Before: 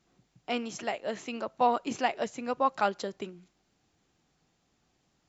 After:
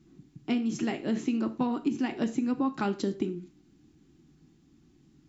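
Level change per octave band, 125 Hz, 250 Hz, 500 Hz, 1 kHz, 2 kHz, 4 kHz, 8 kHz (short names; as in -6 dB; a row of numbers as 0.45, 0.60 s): +10.5 dB, +10.5 dB, -3.0 dB, -9.0 dB, -4.0 dB, -3.0 dB, n/a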